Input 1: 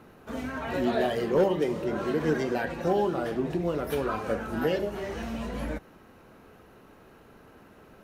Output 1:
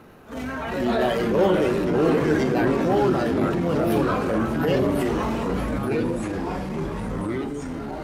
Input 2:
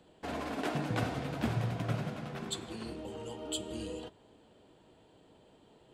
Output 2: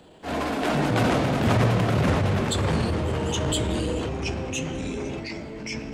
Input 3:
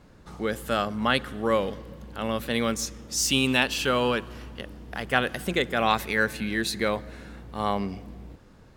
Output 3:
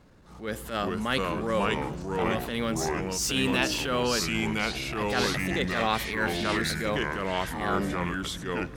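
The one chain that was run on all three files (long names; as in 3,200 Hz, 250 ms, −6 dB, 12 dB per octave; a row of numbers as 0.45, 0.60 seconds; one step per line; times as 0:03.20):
delay with pitch and tempo change per echo 343 ms, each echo −3 semitones, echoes 3
transient designer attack −10 dB, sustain +2 dB
normalise the peak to −9 dBFS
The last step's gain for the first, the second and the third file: +5.0, +11.5, −2.5 decibels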